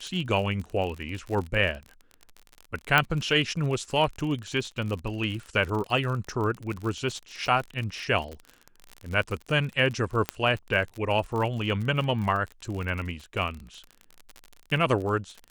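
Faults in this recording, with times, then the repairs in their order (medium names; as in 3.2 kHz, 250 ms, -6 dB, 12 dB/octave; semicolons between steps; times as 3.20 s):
crackle 41 per s -32 dBFS
2.98 s: pop -7 dBFS
10.29 s: pop -10 dBFS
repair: de-click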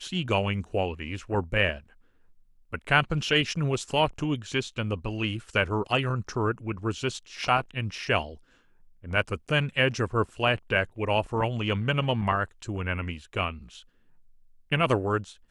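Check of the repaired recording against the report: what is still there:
2.98 s: pop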